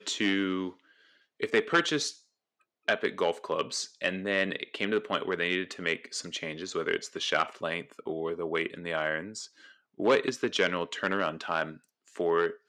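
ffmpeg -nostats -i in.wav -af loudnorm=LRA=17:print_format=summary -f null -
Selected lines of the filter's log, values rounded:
Input Integrated:    -30.1 LUFS
Input True Peak:     -11.7 dBTP
Input LRA:             2.8 LU
Input Threshold:     -40.5 LUFS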